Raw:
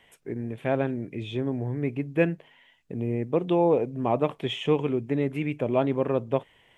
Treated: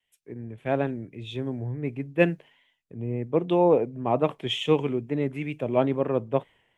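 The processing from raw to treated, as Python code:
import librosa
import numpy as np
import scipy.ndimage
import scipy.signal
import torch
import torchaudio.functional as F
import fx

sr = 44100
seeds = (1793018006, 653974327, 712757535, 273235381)

y = fx.wow_flutter(x, sr, seeds[0], rate_hz=2.1, depth_cents=49.0)
y = fx.band_widen(y, sr, depth_pct=70)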